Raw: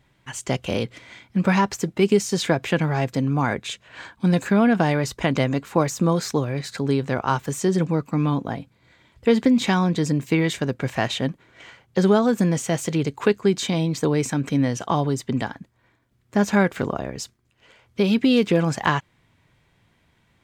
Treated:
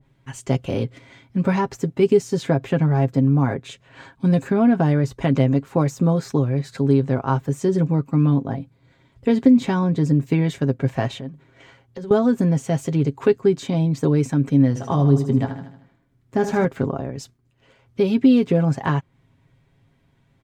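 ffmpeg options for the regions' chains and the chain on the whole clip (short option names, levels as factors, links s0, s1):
-filter_complex "[0:a]asettb=1/sr,asplit=3[s0][s1][s2];[s0]atrim=end=11.204[s3];[s1]atrim=start=11.2:end=12.11,asetpts=PTS-STARTPTS,afade=t=in:d=0.004:c=qsin,afade=t=out:st=0.906:d=0.004:c=qsin,acompressor=threshold=0.0224:ratio=4:attack=3.2:release=140:knee=1:detection=peak,bandreject=f=50:t=h:w=6,bandreject=f=100:t=h:w=6,bandreject=f=150:t=h:w=6,bandreject=f=200:t=h:w=6,bandreject=f=250:t=h:w=6[s4];[s2]atrim=start=12.106[s5];[s3][s4]acrossfade=d=0.004:c1=hsin:c2=qsin[s6];[s6][s5]acrossfade=d=0.004:c1=qsin:c2=hsin,asettb=1/sr,asplit=3[s7][s8][s9];[s7]atrim=end=14.684[s10];[s8]atrim=start=14.68:end=16.65,asetpts=PTS-STARTPTS,afade=t=in:d=0.004:c=qsin,afade=t=out:st=1.966:d=0.004:c=qsin,asplit=2[s11][s12];[s12]adelay=22,volume=0.266[s13];[s11][s13]amix=inputs=2:normalize=0,atrim=end_sample=86877,aecho=1:1:77|154|231|308|385|462:0.355|0.177|0.0887|0.0444|0.0222|0.0111,atrim=end_sample=86877[s14];[s9]atrim=start=16.646[s15];[s10][s14]acrossfade=d=0.004:c1=hsin:c2=qsin[s16];[s16][s15]acrossfade=d=0.004:c1=qsin:c2=hsin,tiltshelf=f=670:g=5,aecho=1:1:7.4:0.51,adynamicequalizer=threshold=0.0178:dfrequency=1900:dqfactor=0.7:tfrequency=1900:tqfactor=0.7:attack=5:release=100:ratio=0.375:range=3:mode=cutabove:tftype=highshelf,volume=0.794"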